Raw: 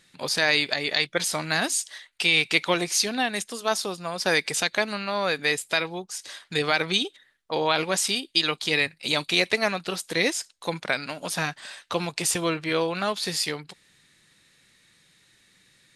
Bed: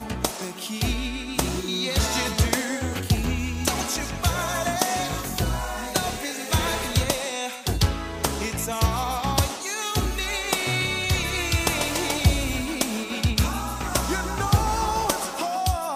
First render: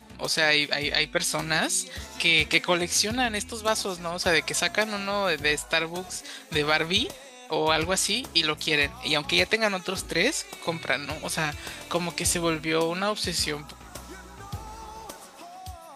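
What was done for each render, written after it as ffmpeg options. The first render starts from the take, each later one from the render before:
ffmpeg -i in.wav -i bed.wav -filter_complex "[1:a]volume=-17dB[link_01];[0:a][link_01]amix=inputs=2:normalize=0" out.wav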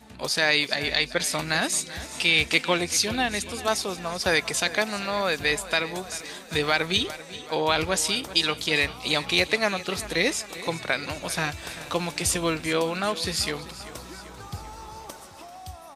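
ffmpeg -i in.wav -af "aecho=1:1:390|780|1170|1560|1950|2340:0.158|0.0919|0.0533|0.0309|0.0179|0.0104" out.wav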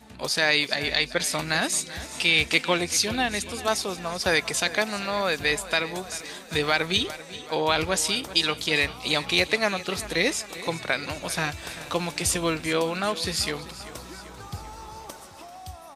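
ffmpeg -i in.wav -af anull out.wav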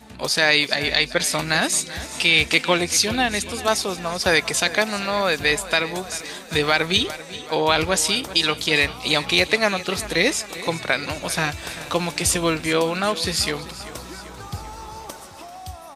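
ffmpeg -i in.wav -af "volume=4.5dB,alimiter=limit=-3dB:level=0:latency=1" out.wav

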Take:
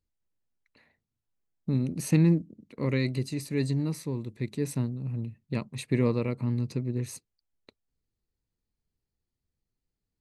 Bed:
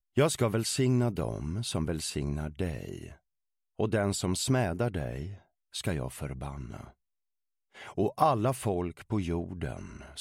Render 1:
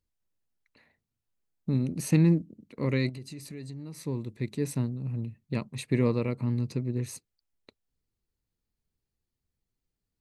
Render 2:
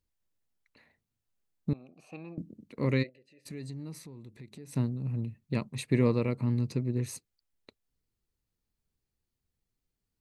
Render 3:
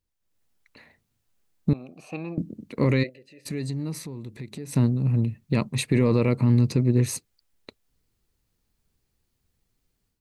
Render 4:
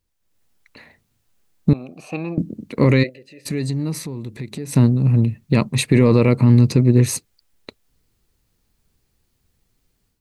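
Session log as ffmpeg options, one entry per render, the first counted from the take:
ffmpeg -i in.wav -filter_complex "[0:a]asettb=1/sr,asplit=3[link_01][link_02][link_03];[link_01]atrim=end=3.094[link_04];[link_02]atrim=start=3.09:end=4.06,asetpts=PTS-STARTPTS,afade=type=in:duration=0.004:curve=qsin,afade=type=out:start_time=0.966:duration=0.004:curve=qsin,acompressor=threshold=-39dB:ratio=4:attack=3.2:release=140:knee=1:detection=peak[link_05];[link_03]atrim=start=4.056[link_06];[link_04][link_05]acrossfade=duration=0.004:curve1=hsin:curve2=qsin[link_07];[link_07][link_06]acrossfade=duration=0.004:curve1=qsin:curve2=hsin" out.wav
ffmpeg -i in.wav -filter_complex "[0:a]asettb=1/sr,asplit=3[link_01][link_02][link_03];[link_01]atrim=end=1.734[link_04];[link_02]atrim=start=1.73:end=2.38,asetpts=PTS-STARTPTS,afade=type=in:duration=0.004:curve=qsin,afade=type=out:start_time=0.646:duration=0.004:curve=qsin,asplit=3[link_05][link_06][link_07];[link_05]bandpass=frequency=730:width_type=q:width=8,volume=0dB[link_08];[link_06]bandpass=frequency=1090:width_type=q:width=8,volume=-6dB[link_09];[link_07]bandpass=frequency=2440:width_type=q:width=8,volume=-9dB[link_10];[link_08][link_09][link_10]amix=inputs=3:normalize=0[link_11];[link_03]atrim=start=2.376[link_12];[link_04][link_11]acrossfade=duration=0.004:curve1=hsin:curve2=qsin[link_13];[link_13][link_12]acrossfade=duration=0.004:curve1=qsin:curve2=hsin,asplit=3[link_14][link_15][link_16];[link_14]afade=type=out:start_time=3.02:duration=0.02[link_17];[link_15]asplit=3[link_18][link_19][link_20];[link_18]bandpass=frequency=530:width_type=q:width=8,volume=0dB[link_21];[link_19]bandpass=frequency=1840:width_type=q:width=8,volume=-6dB[link_22];[link_20]bandpass=frequency=2480:width_type=q:width=8,volume=-9dB[link_23];[link_21][link_22][link_23]amix=inputs=3:normalize=0,afade=type=in:start_time=3.02:duration=0.02,afade=type=out:start_time=3.45:duration=0.02[link_24];[link_16]afade=type=in:start_time=3.45:duration=0.02[link_25];[link_17][link_24][link_25]amix=inputs=3:normalize=0,asplit=3[link_26][link_27][link_28];[link_26]afade=type=out:start_time=3.97:duration=0.02[link_29];[link_27]acompressor=threshold=-46dB:ratio=4:attack=3.2:release=140:knee=1:detection=peak,afade=type=in:start_time=3.97:duration=0.02,afade=type=out:start_time=4.72:duration=0.02[link_30];[link_28]afade=type=in:start_time=4.72:duration=0.02[link_31];[link_29][link_30][link_31]amix=inputs=3:normalize=0" out.wav
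ffmpeg -i in.wav -af "alimiter=limit=-21.5dB:level=0:latency=1:release=18,dynaudnorm=framelen=210:gausssize=3:maxgain=10.5dB" out.wav
ffmpeg -i in.wav -af "volume=7dB" out.wav

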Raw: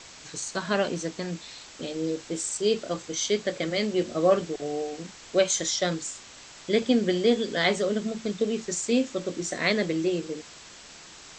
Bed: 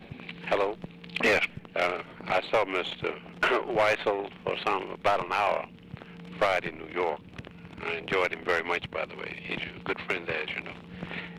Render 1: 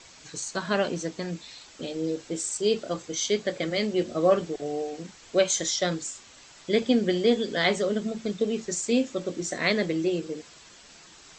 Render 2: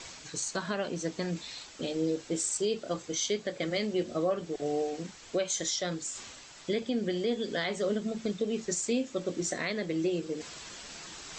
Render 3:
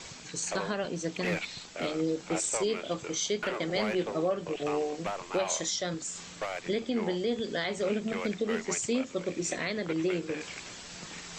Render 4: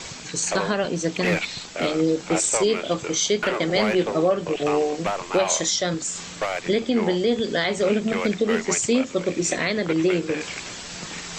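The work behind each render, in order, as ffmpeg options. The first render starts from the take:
ffmpeg -i in.wav -af "afftdn=noise_reduction=6:noise_floor=-47" out.wav
ffmpeg -i in.wav -af "areverse,acompressor=mode=upward:threshold=-37dB:ratio=2.5,areverse,alimiter=limit=-20.5dB:level=0:latency=1:release=343" out.wav
ffmpeg -i in.wav -i bed.wav -filter_complex "[1:a]volume=-10.5dB[link_01];[0:a][link_01]amix=inputs=2:normalize=0" out.wav
ffmpeg -i in.wav -af "volume=9dB" out.wav

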